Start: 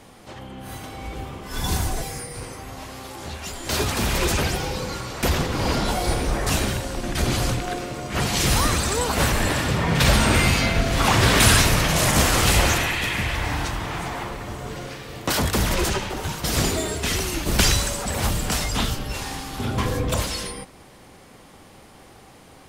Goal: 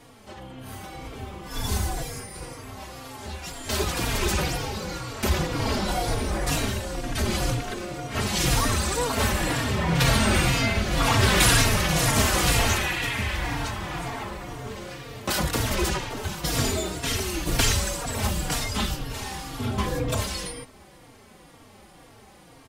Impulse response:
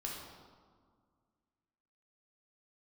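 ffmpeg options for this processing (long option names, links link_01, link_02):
-filter_complex "[0:a]asplit=2[link_01][link_02];[link_02]adelay=3.7,afreqshift=-2[link_03];[link_01][link_03]amix=inputs=2:normalize=1"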